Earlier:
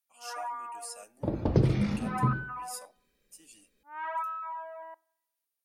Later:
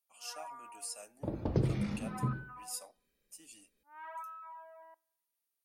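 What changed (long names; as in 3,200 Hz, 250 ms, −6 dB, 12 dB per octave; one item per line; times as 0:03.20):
first sound −11.0 dB
second sound −6.5 dB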